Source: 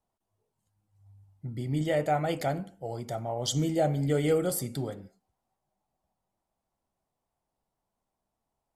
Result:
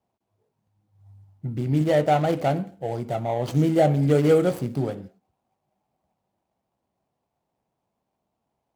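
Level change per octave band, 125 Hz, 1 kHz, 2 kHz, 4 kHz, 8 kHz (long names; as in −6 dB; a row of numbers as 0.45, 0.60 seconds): +7.5, +7.0, +4.5, −1.5, −7.0 decibels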